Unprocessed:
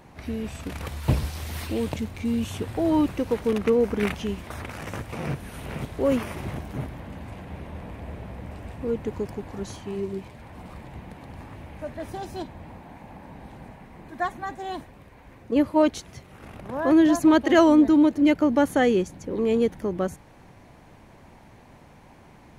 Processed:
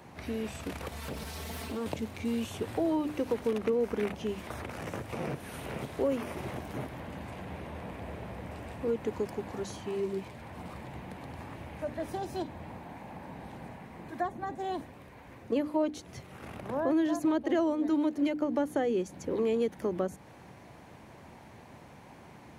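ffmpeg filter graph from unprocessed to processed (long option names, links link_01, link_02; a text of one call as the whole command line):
ffmpeg -i in.wav -filter_complex "[0:a]asettb=1/sr,asplit=3[link_01][link_02][link_03];[link_01]atrim=end=0.924[link_04];[link_02]atrim=start=0.92:end=1.86,asetpts=PTS-STARTPTS,afade=type=in:duration=0.004:curve=qsin,afade=type=out:start_time=0.936:duration=0.004:curve=qsin,aecho=1:1:4.5:0.76,atrim=end_sample=41454,acompressor=threshold=-27dB:ratio=5:attack=3.2:release=140:knee=1:detection=peak,aeval=exprs='0.0447*(abs(mod(val(0)/0.0447+3,4)-2)-1)':channel_layout=same[link_05];[link_03]atrim=start=1.856[link_06];[link_04][link_05]acrossfade=duration=0.004:curve1=hsin:curve2=qsin[link_07];[link_07][link_06]acrossfade=duration=0.004:curve1=qsin:curve2=hsin,acrossover=split=300|770[link_08][link_09][link_10];[link_08]acompressor=threshold=-38dB:ratio=4[link_11];[link_09]acompressor=threshold=-29dB:ratio=4[link_12];[link_10]acompressor=threshold=-43dB:ratio=4[link_13];[link_11][link_12][link_13]amix=inputs=3:normalize=0,highpass=77,bandreject=frequency=50:width_type=h:width=6,bandreject=frequency=100:width_type=h:width=6,bandreject=frequency=150:width_type=h:width=6,bandreject=frequency=200:width_type=h:width=6,bandreject=frequency=250:width_type=h:width=6,bandreject=frequency=300:width_type=h:width=6" out.wav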